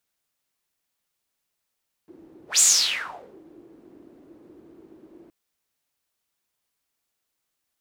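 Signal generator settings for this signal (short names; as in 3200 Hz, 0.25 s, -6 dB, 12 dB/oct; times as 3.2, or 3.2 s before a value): whoosh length 3.22 s, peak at 0.52, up 0.14 s, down 0.84 s, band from 330 Hz, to 7400 Hz, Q 6.6, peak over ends 34 dB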